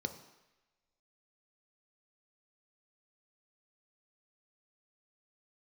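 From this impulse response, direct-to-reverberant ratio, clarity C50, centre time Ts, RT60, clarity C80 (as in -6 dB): 7.0 dB, 11.0 dB, 14 ms, 1.0 s, 13.5 dB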